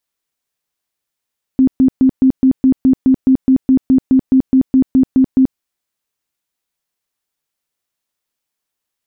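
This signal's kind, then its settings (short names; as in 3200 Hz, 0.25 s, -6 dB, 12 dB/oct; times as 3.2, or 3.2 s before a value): tone bursts 262 Hz, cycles 22, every 0.21 s, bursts 19, -6 dBFS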